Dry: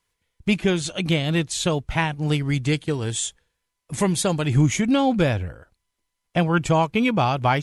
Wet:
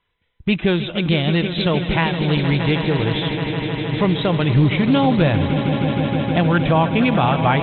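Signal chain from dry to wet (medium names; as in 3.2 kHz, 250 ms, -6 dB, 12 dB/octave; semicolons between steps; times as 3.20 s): brick-wall FIR low-pass 4 kHz; echo with a slow build-up 156 ms, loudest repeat 5, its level -13 dB; in parallel at +2 dB: peak limiter -15 dBFS, peak gain reduction 9.5 dB; on the sum: loudspeaker Doppler distortion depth 0.13 ms; trim -2 dB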